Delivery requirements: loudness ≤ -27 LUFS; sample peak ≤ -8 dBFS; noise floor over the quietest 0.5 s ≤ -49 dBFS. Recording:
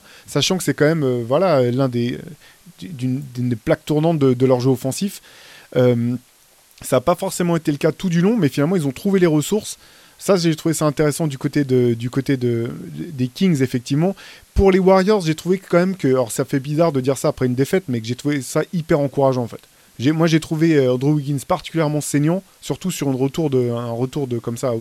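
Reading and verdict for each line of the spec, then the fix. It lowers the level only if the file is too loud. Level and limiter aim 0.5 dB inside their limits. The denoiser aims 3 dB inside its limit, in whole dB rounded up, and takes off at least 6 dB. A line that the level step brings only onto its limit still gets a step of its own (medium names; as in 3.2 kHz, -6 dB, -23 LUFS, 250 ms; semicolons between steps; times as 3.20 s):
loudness -19.0 LUFS: fail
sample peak -2.5 dBFS: fail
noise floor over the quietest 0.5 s -53 dBFS: pass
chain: trim -8.5 dB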